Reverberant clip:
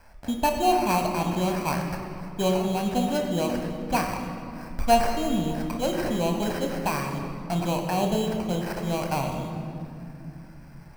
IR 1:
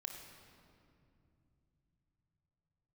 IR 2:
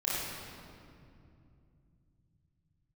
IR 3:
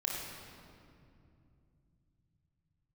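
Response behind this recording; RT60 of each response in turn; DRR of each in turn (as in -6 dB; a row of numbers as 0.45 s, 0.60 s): 1; 2.5 s, 2.6 s, 2.6 s; 2.5 dB, -9.0 dB, -3.0 dB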